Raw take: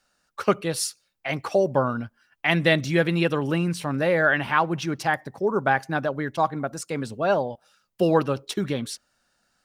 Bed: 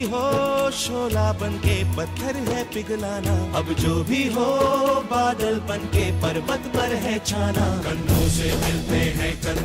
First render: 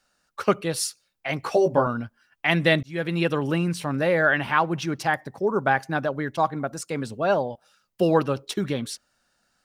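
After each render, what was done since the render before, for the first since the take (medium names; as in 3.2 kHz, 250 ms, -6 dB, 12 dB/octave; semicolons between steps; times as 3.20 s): 1.41–1.87 s: doubling 18 ms -2.5 dB; 2.83–3.40 s: fade in equal-power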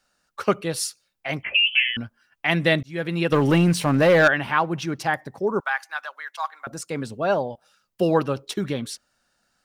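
1.43–1.97 s: frequency inversion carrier 3.2 kHz; 3.32–4.28 s: waveshaping leveller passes 2; 5.60–6.67 s: high-pass 1 kHz 24 dB/octave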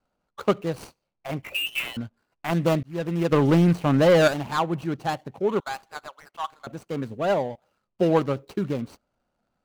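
median filter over 25 samples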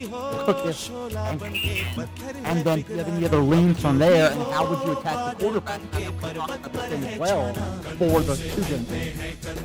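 add bed -8 dB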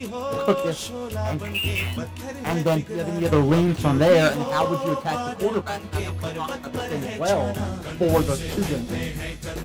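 doubling 20 ms -8 dB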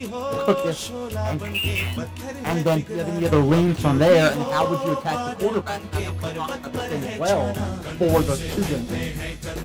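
trim +1 dB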